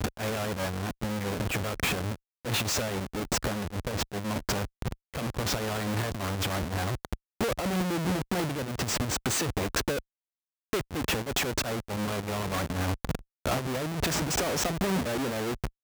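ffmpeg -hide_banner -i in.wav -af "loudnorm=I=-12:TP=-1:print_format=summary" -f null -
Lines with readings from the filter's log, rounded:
Input Integrated:    -30.4 LUFS
Input True Peak:     -16.4 dBTP
Input LRA:             1.7 LU
Input Threshold:     -40.4 LUFS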